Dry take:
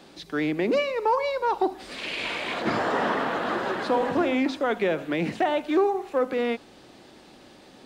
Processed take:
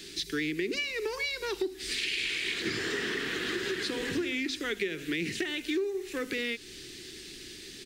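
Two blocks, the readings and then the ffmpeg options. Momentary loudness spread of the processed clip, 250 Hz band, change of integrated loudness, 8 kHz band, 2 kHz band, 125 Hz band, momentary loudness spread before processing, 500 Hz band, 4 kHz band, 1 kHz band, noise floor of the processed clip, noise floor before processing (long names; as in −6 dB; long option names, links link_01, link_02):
13 LU, −7.0 dB, −6.0 dB, +8.5 dB, −1.0 dB, −6.5 dB, 5 LU, −9.5 dB, +3.0 dB, −19.5 dB, −46 dBFS, −51 dBFS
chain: -af "firequalizer=gain_entry='entry(120,0);entry(230,-5);entry(390,6);entry(570,-19);entry(870,-19);entry(1800,7);entry(5700,14)':delay=0.05:min_phase=1,acompressor=threshold=-30dB:ratio=5,lowshelf=frequency=75:gain=11.5"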